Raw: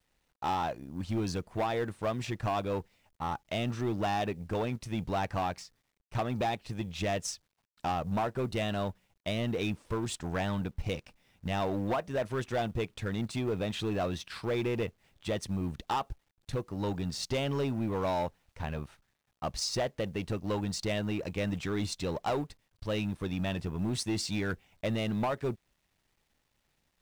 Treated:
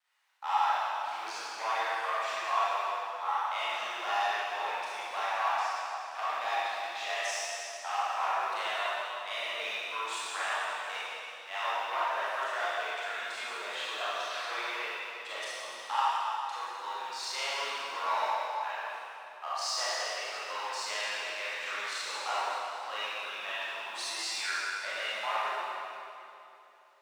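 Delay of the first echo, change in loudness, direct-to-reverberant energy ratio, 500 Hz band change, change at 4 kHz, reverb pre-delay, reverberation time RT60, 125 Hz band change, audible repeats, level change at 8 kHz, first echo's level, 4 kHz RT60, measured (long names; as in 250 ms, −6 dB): no echo audible, +0.5 dB, −10.5 dB, −6.0 dB, +4.5 dB, 28 ms, 3.0 s, below −40 dB, no echo audible, +2.0 dB, no echo audible, 2.5 s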